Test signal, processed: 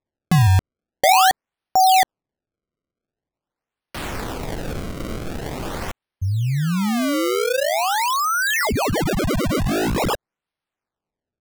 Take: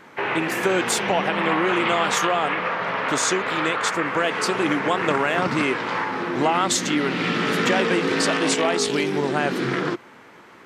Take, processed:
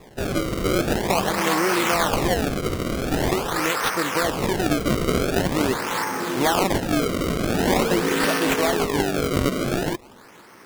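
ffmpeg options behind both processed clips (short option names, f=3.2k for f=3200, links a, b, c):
-af "acrusher=samples=29:mix=1:aa=0.000001:lfo=1:lforange=46.4:lforate=0.45"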